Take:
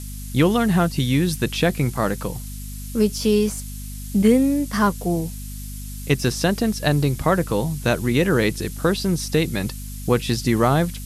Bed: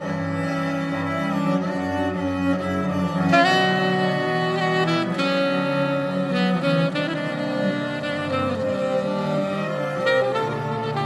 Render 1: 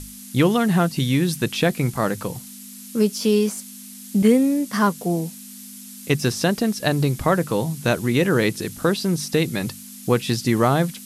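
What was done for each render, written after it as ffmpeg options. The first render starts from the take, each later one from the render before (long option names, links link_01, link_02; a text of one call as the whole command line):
ffmpeg -i in.wav -af "bandreject=frequency=50:width_type=h:width=6,bandreject=frequency=100:width_type=h:width=6,bandreject=frequency=150:width_type=h:width=6" out.wav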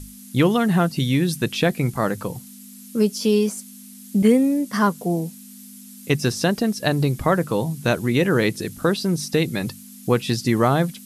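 ffmpeg -i in.wav -af "afftdn=noise_reduction=6:noise_floor=-40" out.wav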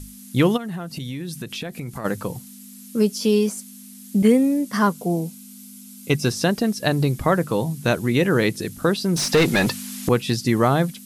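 ffmpeg -i in.wav -filter_complex "[0:a]asplit=3[link_01][link_02][link_03];[link_01]afade=type=out:start_time=0.56:duration=0.02[link_04];[link_02]acompressor=threshold=-27dB:ratio=8:attack=3.2:release=140:knee=1:detection=peak,afade=type=in:start_time=0.56:duration=0.02,afade=type=out:start_time=2.04:duration=0.02[link_05];[link_03]afade=type=in:start_time=2.04:duration=0.02[link_06];[link_04][link_05][link_06]amix=inputs=3:normalize=0,asettb=1/sr,asplit=3[link_07][link_08][link_09];[link_07]atrim=end=4.934[link_10];[link_08]atrim=start=4.93:end=6.3,asetpts=PTS-STARTPTS,afade=type=in:duration=0.004:curve=qsin,afade=type=out:start_time=1.366:duration=0.004:curve=qsin,asuperstop=centerf=1800:order=12:qfactor=7.8[link_11];[link_09]atrim=start=6.296[link_12];[link_10][link_11]acrossfade=duration=0.004:curve1=hsin:curve2=qsin[link_13];[link_13][link_12]acrossfade=duration=0.004:curve1=qsin:curve2=hsin,asettb=1/sr,asplit=3[link_14][link_15][link_16];[link_14]atrim=end=9.164[link_17];[link_15]atrim=start=9.16:end=10.09,asetpts=PTS-STARTPTS,afade=type=in:duration=0.004:curve=qsin,afade=type=out:start_time=0.926:duration=0.004:curve=qsin,asplit=2[link_18][link_19];[link_19]highpass=frequency=720:poles=1,volume=25dB,asoftclip=type=tanh:threshold=-8dB[link_20];[link_18][link_20]amix=inputs=2:normalize=0,lowpass=frequency=2900:poles=1,volume=-6dB[link_21];[link_16]atrim=start=10.086[link_22];[link_17][link_21]acrossfade=duration=0.004:curve1=hsin:curve2=qsin[link_23];[link_23][link_22]acrossfade=duration=0.004:curve1=qsin:curve2=hsin" out.wav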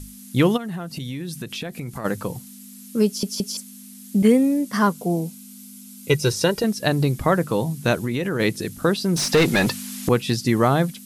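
ffmpeg -i in.wav -filter_complex "[0:a]asettb=1/sr,asplit=3[link_01][link_02][link_03];[link_01]atrim=end=6.084[link_04];[link_02]atrim=start=6.08:end=6.64,asetpts=PTS-STARTPTS,afade=type=in:duration=0.004:curve=qsin,afade=type=out:start_time=0.556:duration=0.004:curve=qsin,aecho=1:1:2.1:0.68,atrim=end_sample=24696[link_05];[link_03]atrim=start=6.636[link_06];[link_04][link_05]acrossfade=duration=0.004:curve1=hsin:curve2=qsin[link_07];[link_07][link_06]acrossfade=duration=0.004:curve1=qsin:curve2=hsin,asplit=3[link_08][link_09][link_10];[link_08]afade=type=out:start_time=7.99:duration=0.02[link_11];[link_09]acompressor=threshold=-20dB:ratio=6:attack=3.2:release=140:knee=1:detection=peak,afade=type=in:start_time=7.99:duration=0.02,afade=type=out:start_time=8.39:duration=0.02[link_12];[link_10]afade=type=in:start_time=8.39:duration=0.02[link_13];[link_11][link_12][link_13]amix=inputs=3:normalize=0,asplit=4[link_14][link_15][link_16][link_17];[link_14]atrim=end=3.232[link_18];[link_15]atrim=start=3.058:end=3.232[link_19];[link_16]atrim=start=3.058:end=3.232[link_20];[link_17]atrim=start=3.568[link_21];[link_18][link_19]acrossfade=duration=0.004:curve1=hsin:curve2=hsin[link_22];[link_22][link_20]acrossfade=duration=0.004:curve1=hsin:curve2=hsin[link_23];[link_23][link_21]acrossfade=duration=0.004:curve1=hsin:curve2=hsin" out.wav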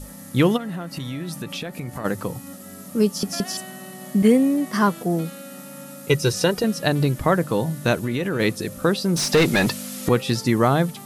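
ffmpeg -i in.wav -i bed.wav -filter_complex "[1:a]volume=-19.5dB[link_01];[0:a][link_01]amix=inputs=2:normalize=0" out.wav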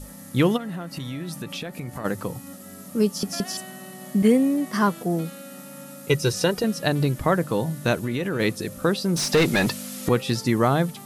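ffmpeg -i in.wav -af "volume=-2dB" out.wav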